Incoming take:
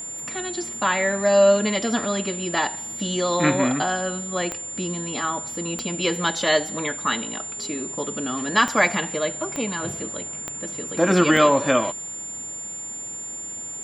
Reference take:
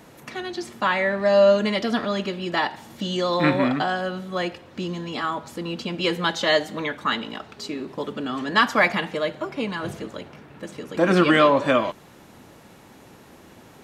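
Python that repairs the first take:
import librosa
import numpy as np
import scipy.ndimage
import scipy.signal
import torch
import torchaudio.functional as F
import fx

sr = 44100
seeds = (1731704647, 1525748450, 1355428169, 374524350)

y = fx.fix_declick_ar(x, sr, threshold=10.0)
y = fx.notch(y, sr, hz=7200.0, q=30.0)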